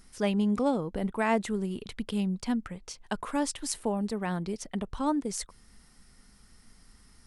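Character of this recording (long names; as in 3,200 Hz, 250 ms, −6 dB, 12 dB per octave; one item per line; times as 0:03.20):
background noise floor −59 dBFS
spectral slope −5.0 dB per octave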